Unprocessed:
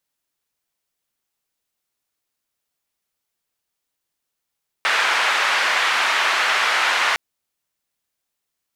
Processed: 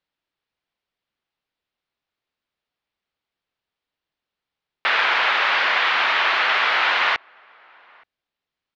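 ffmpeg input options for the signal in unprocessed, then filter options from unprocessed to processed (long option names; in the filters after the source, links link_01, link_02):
-f lavfi -i "anoisesrc=color=white:duration=2.31:sample_rate=44100:seed=1,highpass=frequency=1100,lowpass=frequency=1900,volume=-0.7dB"
-filter_complex "[0:a]lowpass=frequency=4100:width=0.5412,lowpass=frequency=4100:width=1.3066,asplit=2[link_01][link_02];[link_02]adelay=874.6,volume=-28dB,highshelf=frequency=4000:gain=-19.7[link_03];[link_01][link_03]amix=inputs=2:normalize=0"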